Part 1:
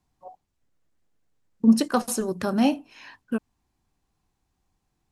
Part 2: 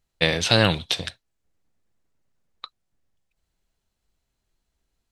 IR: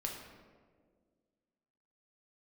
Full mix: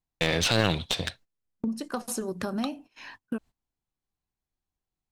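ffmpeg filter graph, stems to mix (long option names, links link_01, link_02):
-filter_complex "[0:a]acompressor=threshold=-29dB:ratio=12,volume=1.5dB[link_01];[1:a]highshelf=frequency=5100:gain=-4.5,volume=2.5dB[link_02];[link_01][link_02]amix=inputs=2:normalize=0,agate=range=-19dB:threshold=-47dB:ratio=16:detection=peak,aeval=exprs='clip(val(0),-1,0.0794)':channel_layout=same,alimiter=limit=-8.5dB:level=0:latency=1:release=200"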